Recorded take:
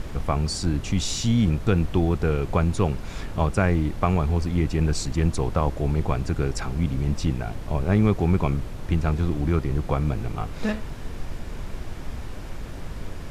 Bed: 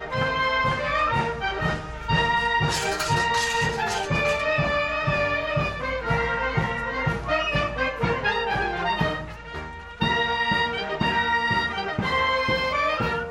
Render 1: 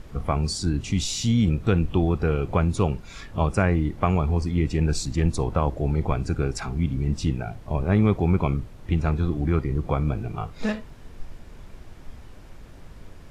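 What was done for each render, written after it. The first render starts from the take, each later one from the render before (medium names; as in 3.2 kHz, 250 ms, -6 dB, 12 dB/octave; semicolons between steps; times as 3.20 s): noise print and reduce 10 dB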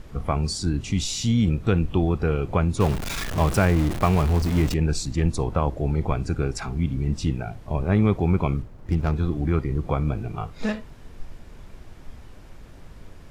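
2.80–4.74 s: jump at every zero crossing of -25 dBFS; 8.62–9.16 s: median filter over 15 samples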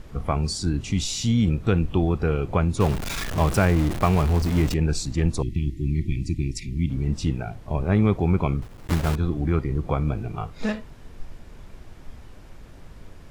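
5.42–6.90 s: brick-wall FIR band-stop 380–1800 Hz; 8.62–9.16 s: block-companded coder 3-bit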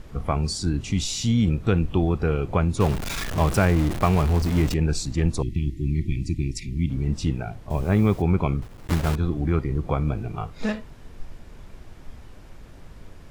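7.70–8.22 s: word length cut 8-bit, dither none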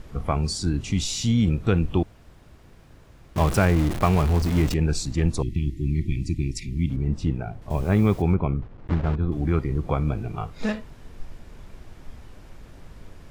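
2.03–3.36 s: room tone; 6.96–7.62 s: treble shelf 2.4 kHz -10.5 dB; 8.34–9.32 s: tape spacing loss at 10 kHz 33 dB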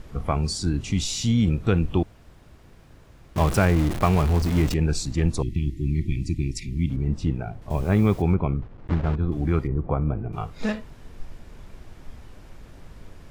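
9.67–10.33 s: low-pass 1.3 kHz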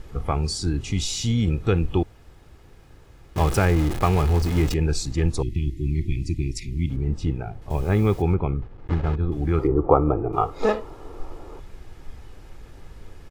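9.60–11.59 s: time-frequency box 260–1400 Hz +11 dB; comb 2.4 ms, depth 34%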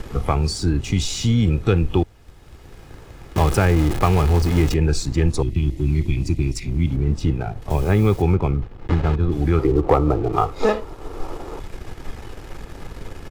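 waveshaping leveller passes 1; three bands compressed up and down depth 40%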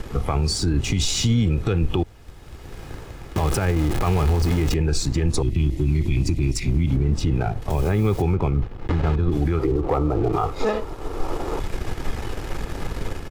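level rider gain up to 6.5 dB; peak limiter -12 dBFS, peak gain reduction 10 dB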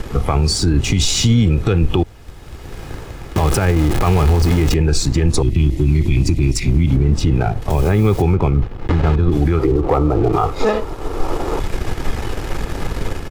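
trim +6 dB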